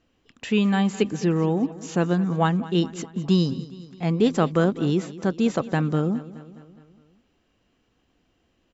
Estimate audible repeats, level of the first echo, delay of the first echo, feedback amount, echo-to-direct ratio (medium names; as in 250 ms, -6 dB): 4, -17.0 dB, 208 ms, 57%, -15.5 dB